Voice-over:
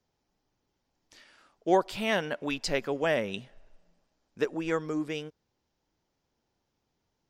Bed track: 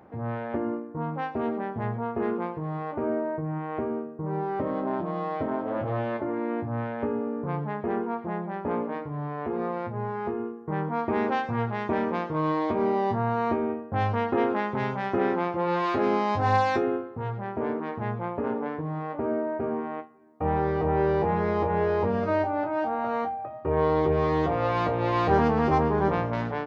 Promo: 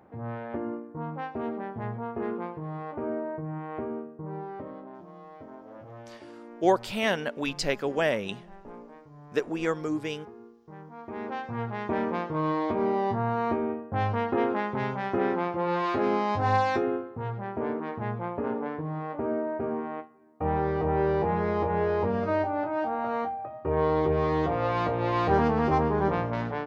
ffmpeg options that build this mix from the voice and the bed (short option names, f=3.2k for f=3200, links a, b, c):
-filter_complex "[0:a]adelay=4950,volume=1.5dB[a];[1:a]volume=11dB,afade=t=out:st=4:d=0.9:silence=0.237137,afade=t=in:st=10.96:d=1.05:silence=0.177828[b];[a][b]amix=inputs=2:normalize=0"